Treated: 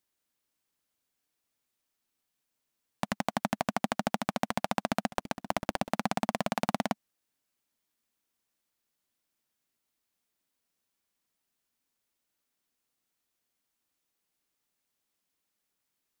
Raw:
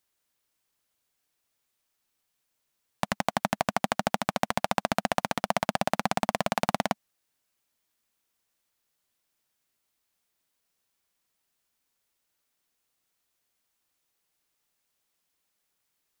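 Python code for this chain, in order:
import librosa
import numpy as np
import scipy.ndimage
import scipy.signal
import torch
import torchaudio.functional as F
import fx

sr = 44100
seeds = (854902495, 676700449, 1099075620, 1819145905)

y = fx.cycle_switch(x, sr, every=3, mode='muted', at=(5.09, 5.88), fade=0.02)
y = fx.peak_eq(y, sr, hz=250.0, db=5.5, octaves=0.96)
y = F.gain(torch.from_numpy(y), -4.5).numpy()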